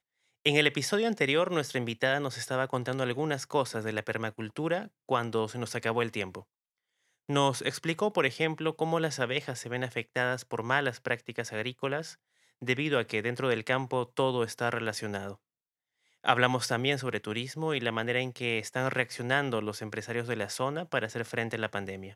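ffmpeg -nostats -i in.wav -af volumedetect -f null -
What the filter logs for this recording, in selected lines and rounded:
mean_volume: -31.3 dB
max_volume: -6.0 dB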